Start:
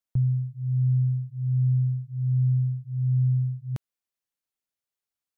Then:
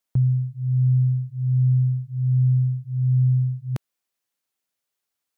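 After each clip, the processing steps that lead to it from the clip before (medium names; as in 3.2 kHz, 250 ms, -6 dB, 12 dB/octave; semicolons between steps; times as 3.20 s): bass shelf 100 Hz -9.5 dB; trim +7.5 dB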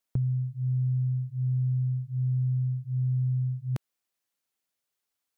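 compression, threshold -23 dBFS, peak gain reduction 7 dB; trim -2 dB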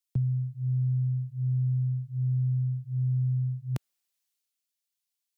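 three bands expanded up and down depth 40%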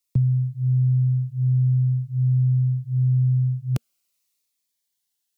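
Shepard-style phaser falling 0.47 Hz; trim +7.5 dB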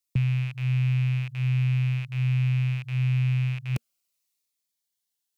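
rattle on loud lows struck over -29 dBFS, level -24 dBFS; trim -4.5 dB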